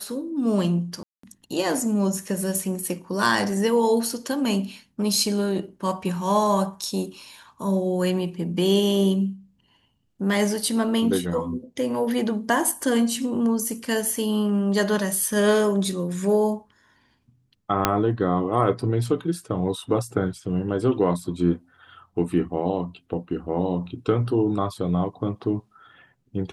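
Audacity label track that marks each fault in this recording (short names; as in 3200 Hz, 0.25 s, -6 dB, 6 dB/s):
1.030000	1.230000	gap 0.204 s
17.850000	17.850000	pop -2 dBFS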